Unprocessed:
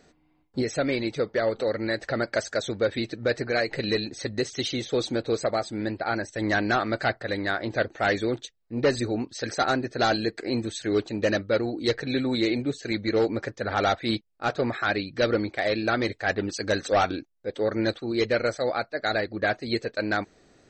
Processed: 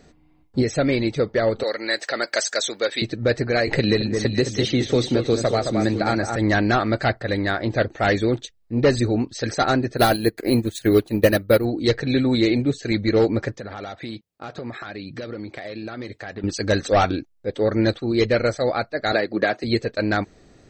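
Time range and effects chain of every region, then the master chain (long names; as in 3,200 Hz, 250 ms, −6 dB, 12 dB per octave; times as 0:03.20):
0:01.63–0:03.02: high-pass filter 300 Hz + spectral tilt +3.5 dB per octave
0:03.67–0:06.36: delay that swaps between a low-pass and a high-pass 216 ms, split 1,900 Hz, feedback 56%, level −7 dB + multiband upward and downward compressor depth 70%
0:09.97–0:11.65: bad sample-rate conversion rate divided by 3×, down none, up hold + transient designer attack +5 dB, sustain −8 dB
0:13.57–0:16.44: high-pass filter 110 Hz + downward compressor, threshold −35 dBFS
0:19.12–0:19.64: high-pass filter 240 Hz + multiband upward and downward compressor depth 100%
whole clip: low-shelf EQ 200 Hz +9 dB; notch filter 1,500 Hz, Q 24; level +3.5 dB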